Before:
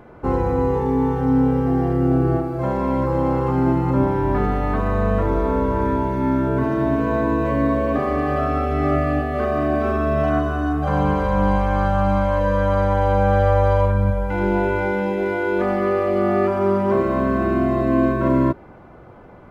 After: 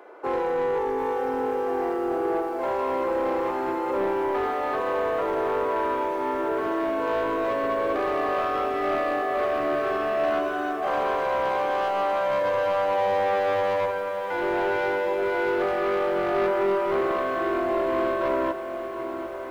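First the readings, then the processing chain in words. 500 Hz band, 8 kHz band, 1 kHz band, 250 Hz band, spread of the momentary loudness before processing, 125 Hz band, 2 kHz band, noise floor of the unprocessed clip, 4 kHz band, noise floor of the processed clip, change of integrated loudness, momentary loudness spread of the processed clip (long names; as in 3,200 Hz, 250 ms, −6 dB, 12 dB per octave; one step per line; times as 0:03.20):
−3.0 dB, can't be measured, −2.5 dB, −12.0 dB, 3 LU, −26.0 dB, −1.5 dB, −43 dBFS, +2.5 dB, −32 dBFS, −5.5 dB, 3 LU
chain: Butterworth high-pass 350 Hz 36 dB per octave
soft clipping −20 dBFS, distortion −13 dB
on a send: feedback delay with all-pass diffusion 1,185 ms, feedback 46%, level −11.5 dB
on the sum: feedback echo at a low word length 750 ms, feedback 35%, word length 8 bits, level −12.5 dB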